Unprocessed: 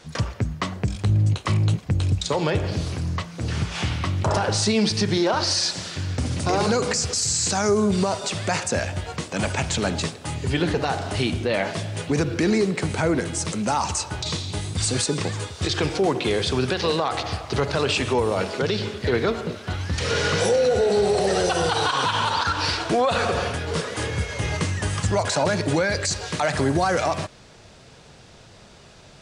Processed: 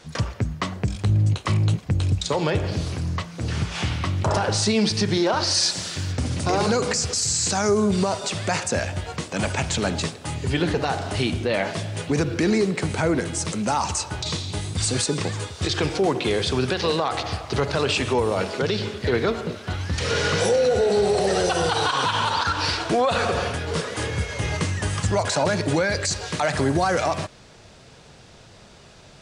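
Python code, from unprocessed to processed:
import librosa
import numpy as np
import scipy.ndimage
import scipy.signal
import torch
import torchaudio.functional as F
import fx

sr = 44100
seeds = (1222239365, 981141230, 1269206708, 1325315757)

y = fx.high_shelf(x, sr, hz=fx.line((5.53, 8900.0), (6.11, 5500.0)), db=9.5, at=(5.53, 6.11), fade=0.02)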